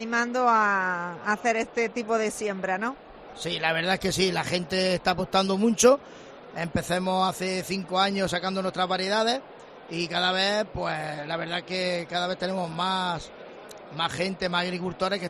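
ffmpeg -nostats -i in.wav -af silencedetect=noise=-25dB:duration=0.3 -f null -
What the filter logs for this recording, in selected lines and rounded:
silence_start: 2.90
silence_end: 3.42 | silence_duration: 0.52
silence_start: 5.95
silence_end: 6.58 | silence_duration: 0.62
silence_start: 9.36
silence_end: 9.93 | silence_duration: 0.57
silence_start: 13.17
silence_end: 13.99 | silence_duration: 0.82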